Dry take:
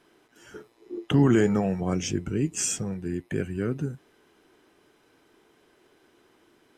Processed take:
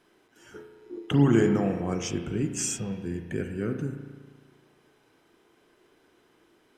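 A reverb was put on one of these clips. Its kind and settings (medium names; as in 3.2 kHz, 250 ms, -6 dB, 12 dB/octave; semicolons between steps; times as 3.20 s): spring tank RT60 1.5 s, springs 35 ms, chirp 55 ms, DRR 5.5 dB; trim -2.5 dB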